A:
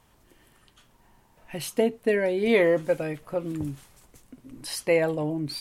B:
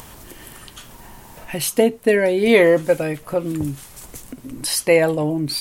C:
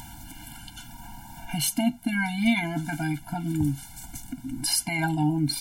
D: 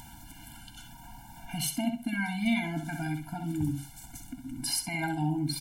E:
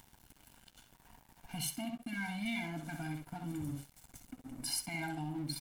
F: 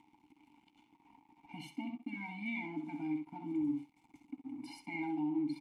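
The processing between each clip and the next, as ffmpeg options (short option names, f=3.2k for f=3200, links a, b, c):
-filter_complex "[0:a]asplit=2[a][b];[b]acompressor=mode=upward:threshold=-29dB:ratio=2.5,volume=-0.5dB[c];[a][c]amix=inputs=2:normalize=0,highshelf=f=6.6k:g=8,volume=1.5dB"
-af "alimiter=limit=-10dB:level=0:latency=1:release=10,afftfilt=real='re*eq(mod(floor(b*sr/1024/340),2),0)':imag='im*eq(mod(floor(b*sr/1024/340),2),0)':win_size=1024:overlap=0.75"
-filter_complex "[0:a]asplit=2[a][b];[b]adelay=65,lowpass=f=4.5k:p=1,volume=-6dB,asplit=2[c][d];[d]adelay=65,lowpass=f=4.5k:p=1,volume=0.25,asplit=2[e][f];[f]adelay=65,lowpass=f=4.5k:p=1,volume=0.25[g];[a][c][e][g]amix=inputs=4:normalize=0,volume=-6dB"
-filter_complex "[0:a]acrossover=split=1700[a][b];[a]alimiter=level_in=2.5dB:limit=-24dB:level=0:latency=1:release=37,volume=-2.5dB[c];[c][b]amix=inputs=2:normalize=0,aeval=exprs='sgn(val(0))*max(abs(val(0))-0.00447,0)':c=same,volume=-5dB"
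-filter_complex "[0:a]asplit=3[a][b][c];[a]bandpass=f=300:t=q:w=8,volume=0dB[d];[b]bandpass=f=870:t=q:w=8,volume=-6dB[e];[c]bandpass=f=2.24k:t=q:w=8,volume=-9dB[f];[d][e][f]amix=inputs=3:normalize=0,volume=10dB"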